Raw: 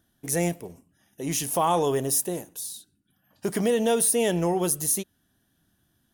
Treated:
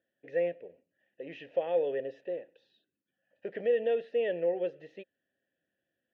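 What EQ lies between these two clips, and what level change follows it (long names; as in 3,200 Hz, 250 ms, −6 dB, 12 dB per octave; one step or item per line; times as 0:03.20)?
formant filter e
low-pass filter 3,400 Hz 24 dB per octave
high-frequency loss of the air 55 metres
+3.0 dB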